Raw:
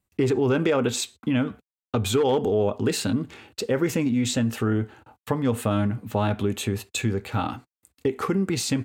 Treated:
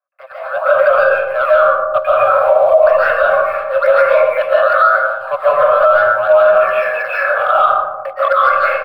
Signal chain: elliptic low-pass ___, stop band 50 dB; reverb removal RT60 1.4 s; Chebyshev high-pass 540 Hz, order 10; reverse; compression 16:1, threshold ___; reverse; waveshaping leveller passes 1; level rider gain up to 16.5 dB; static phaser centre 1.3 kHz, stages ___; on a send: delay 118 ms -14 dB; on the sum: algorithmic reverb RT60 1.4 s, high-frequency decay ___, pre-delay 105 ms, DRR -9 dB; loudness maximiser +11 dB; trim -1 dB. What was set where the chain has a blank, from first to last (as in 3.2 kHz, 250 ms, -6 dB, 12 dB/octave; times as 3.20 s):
1.9 kHz, -42 dBFS, 8, 0.25×